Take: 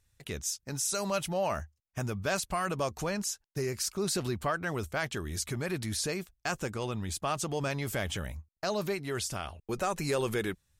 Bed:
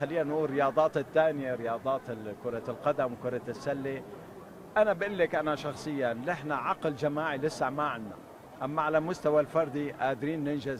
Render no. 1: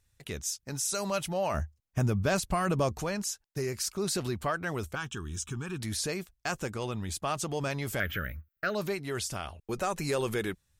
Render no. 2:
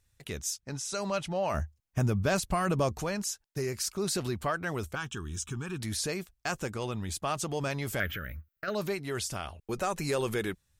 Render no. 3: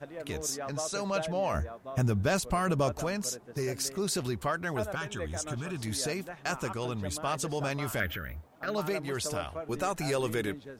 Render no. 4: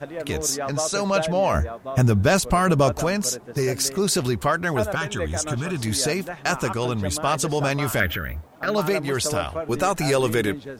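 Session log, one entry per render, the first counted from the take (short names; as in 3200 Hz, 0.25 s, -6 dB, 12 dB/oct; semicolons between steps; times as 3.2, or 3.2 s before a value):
1.54–3 low shelf 460 Hz +8.5 dB; 4.95–5.8 fixed phaser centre 3000 Hz, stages 8; 8–8.75 EQ curve 560 Hz 0 dB, 940 Hz -16 dB, 1400 Hz +12 dB, 9500 Hz -23 dB, 14000 Hz +15 dB
0.6–1.48 air absorption 66 m; 8.14–8.68 compressor 2.5:1, threshold -35 dBFS
add bed -11.5 dB
gain +9.5 dB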